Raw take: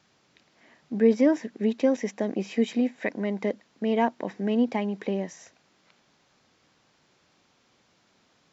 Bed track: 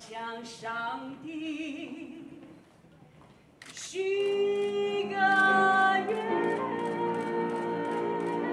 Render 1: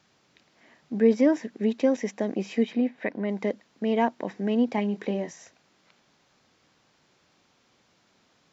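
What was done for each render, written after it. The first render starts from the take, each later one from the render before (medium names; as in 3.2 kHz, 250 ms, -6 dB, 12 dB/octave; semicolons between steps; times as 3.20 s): 2.63–3.29 s: distance through air 180 m; 4.75–5.31 s: doubling 24 ms -9 dB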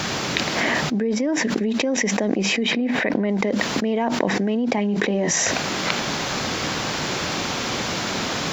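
peak limiter -16.5 dBFS, peak gain reduction 7 dB; level flattener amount 100%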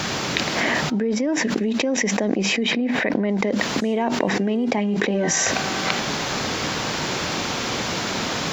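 add bed track -10.5 dB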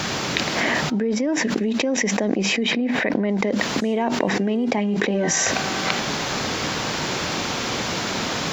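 no audible change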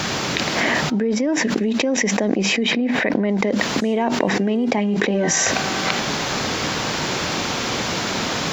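trim +2 dB; peak limiter -3 dBFS, peak gain reduction 3 dB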